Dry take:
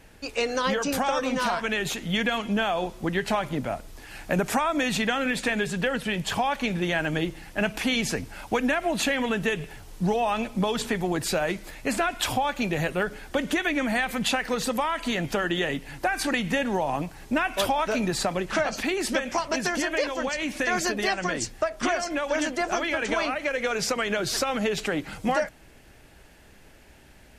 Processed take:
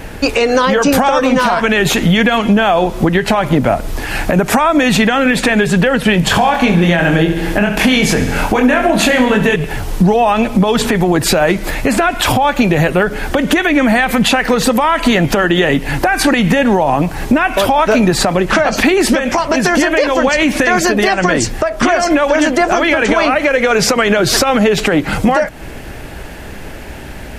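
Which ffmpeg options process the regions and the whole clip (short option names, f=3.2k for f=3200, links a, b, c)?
-filter_complex "[0:a]asettb=1/sr,asplit=3[a][b][c];[a]atrim=end=6.204[d];[b]atrim=start=6.2:end=9.56,asetpts=PTS-STARTPTS,afade=t=in:d=0.004:c=qsin,afade=t=out:st=3.356:d=0.004:c=qsin,asplit=2[e][f];[f]adelay=24,volume=-4.5dB[g];[e][g]amix=inputs=2:normalize=0,atrim=end_sample=148176,aecho=1:1:69|138|207|276|345|414|483:0.251|0.151|0.0904|0.0543|0.0326|0.0195|0.0117,atrim=end_sample=148176[h];[c]atrim=start=9.556[i];[d][h]acrossfade=d=0.004:c1=hsin:c2=qsin[j];[j][i]acrossfade=d=0.004:c1=qsin:c2=hsin,equalizer=f=7k:w=0.36:g=-6,acompressor=threshold=-33dB:ratio=5,alimiter=level_in=25.5dB:limit=-1dB:release=50:level=0:latency=1,volume=-1dB"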